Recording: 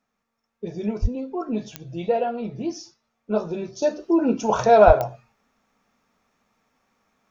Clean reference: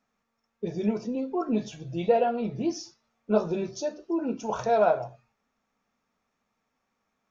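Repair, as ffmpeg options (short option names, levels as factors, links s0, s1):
-filter_complex "[0:a]adeclick=t=4,asplit=3[s0][s1][s2];[s0]afade=t=out:st=1.01:d=0.02[s3];[s1]highpass=f=140:w=0.5412,highpass=f=140:w=1.3066,afade=t=in:st=1.01:d=0.02,afade=t=out:st=1.13:d=0.02[s4];[s2]afade=t=in:st=1.13:d=0.02[s5];[s3][s4][s5]amix=inputs=3:normalize=0,asplit=3[s6][s7][s8];[s6]afade=t=out:st=4.86:d=0.02[s9];[s7]highpass=f=140:w=0.5412,highpass=f=140:w=1.3066,afade=t=in:st=4.86:d=0.02,afade=t=out:st=4.98:d=0.02[s10];[s8]afade=t=in:st=4.98:d=0.02[s11];[s9][s10][s11]amix=inputs=3:normalize=0,asetnsamples=n=441:p=0,asendcmd='3.82 volume volume -9dB',volume=1"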